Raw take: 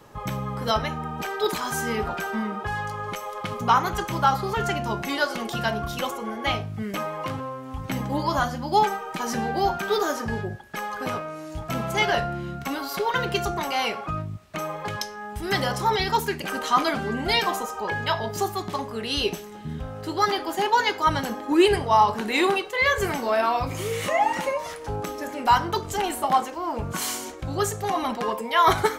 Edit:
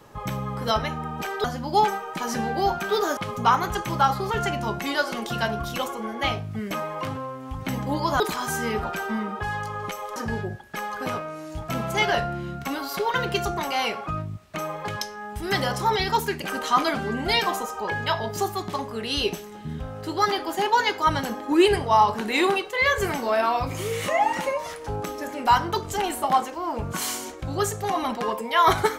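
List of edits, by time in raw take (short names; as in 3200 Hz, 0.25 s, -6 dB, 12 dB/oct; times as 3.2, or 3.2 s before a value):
1.44–3.4 swap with 8.43–10.16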